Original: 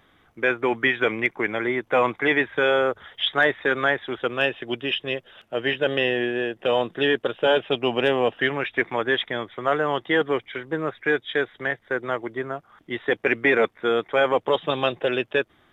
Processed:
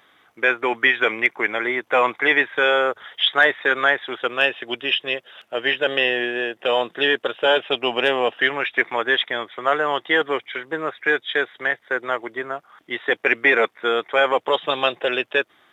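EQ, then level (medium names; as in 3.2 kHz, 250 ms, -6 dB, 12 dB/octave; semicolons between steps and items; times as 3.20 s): high-pass 730 Hz 6 dB/octave; +5.5 dB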